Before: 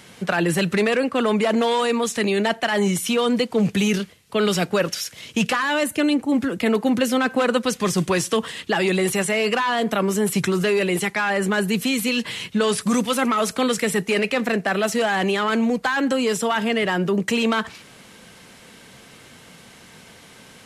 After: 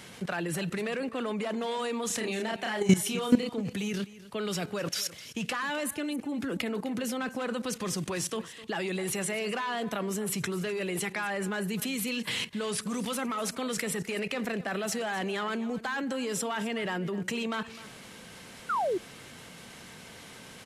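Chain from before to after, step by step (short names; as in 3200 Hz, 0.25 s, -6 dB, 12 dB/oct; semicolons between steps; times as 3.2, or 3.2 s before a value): 2.07–3.53 doubler 32 ms -2 dB; level quantiser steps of 16 dB; on a send: echo 0.255 s -17 dB; 18.69–18.98 on the sum: painted sound fall 330–1500 Hz -28 dBFS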